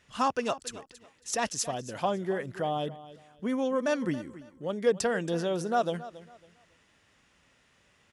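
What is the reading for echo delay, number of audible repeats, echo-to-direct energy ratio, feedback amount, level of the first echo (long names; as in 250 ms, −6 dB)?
276 ms, 2, −16.0 dB, 26%, −16.5 dB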